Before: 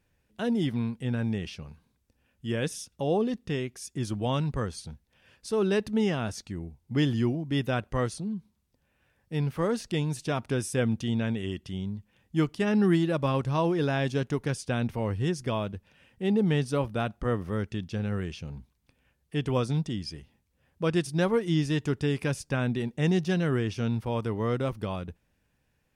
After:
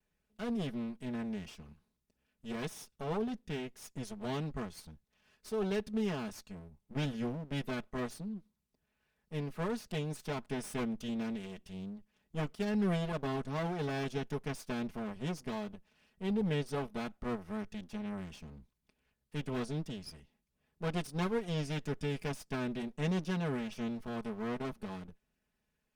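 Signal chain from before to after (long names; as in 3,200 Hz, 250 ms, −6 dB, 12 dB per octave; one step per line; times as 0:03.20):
lower of the sound and its delayed copy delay 4.7 ms
level −8 dB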